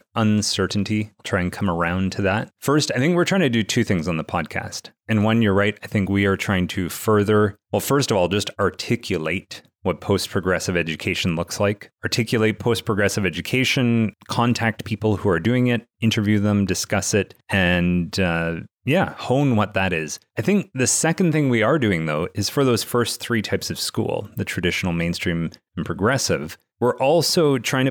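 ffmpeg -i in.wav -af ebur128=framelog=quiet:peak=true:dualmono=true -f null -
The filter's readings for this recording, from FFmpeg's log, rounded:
Integrated loudness:
  I:         -18.0 LUFS
  Threshold: -28.1 LUFS
Loudness range:
  LRA:         3.0 LU
  Threshold: -38.1 LUFS
  LRA low:   -20.0 LUFS
  LRA high:  -17.0 LUFS
True peak:
  Peak:       -6.8 dBFS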